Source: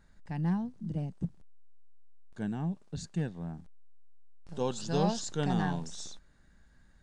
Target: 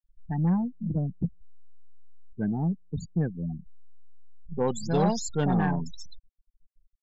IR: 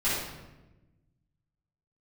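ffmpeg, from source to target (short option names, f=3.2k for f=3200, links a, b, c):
-af "afftfilt=real='re*gte(hypot(re,im),0.02)':imag='im*gte(hypot(re,im),0.02)':win_size=1024:overlap=0.75,asoftclip=type=tanh:threshold=-23dB,volume=7dB"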